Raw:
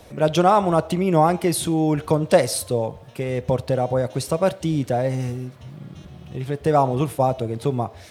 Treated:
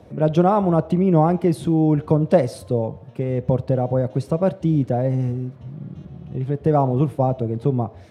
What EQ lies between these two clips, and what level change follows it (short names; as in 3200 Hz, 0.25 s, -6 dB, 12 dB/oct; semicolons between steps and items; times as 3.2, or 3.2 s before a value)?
HPF 140 Hz 12 dB/oct; tilt -4 dB/oct; -4.0 dB